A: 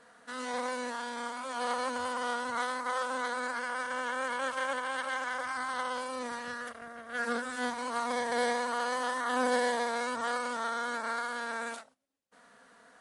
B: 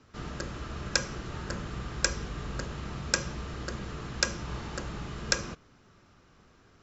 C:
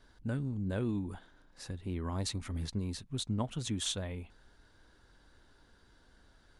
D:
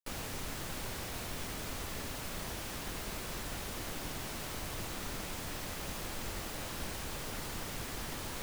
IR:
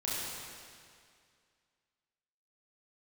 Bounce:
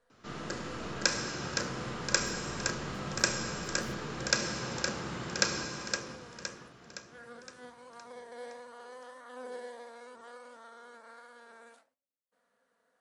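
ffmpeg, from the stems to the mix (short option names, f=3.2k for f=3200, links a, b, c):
-filter_complex "[0:a]equalizer=f=520:t=o:w=0.4:g=8,volume=-14.5dB[a];[1:a]highpass=150,adelay=100,volume=1.5dB,asplit=3[b][c][d];[c]volume=-7dB[e];[d]volume=-3.5dB[f];[2:a]aeval=exprs='abs(val(0))':c=same,volume=-15.5dB,asplit=2[g][h];[h]volume=-18.5dB[i];[4:a]atrim=start_sample=2205[j];[e][i]amix=inputs=2:normalize=0[k];[k][j]afir=irnorm=-1:irlink=0[l];[f]aecho=0:1:515|1030|1545|2060|2575|3090|3605:1|0.51|0.26|0.133|0.0677|0.0345|0.0176[m];[a][b][g][l][m]amix=inputs=5:normalize=0,flanger=delay=7.4:depth=8.5:regen=-78:speed=1.5:shape=sinusoidal"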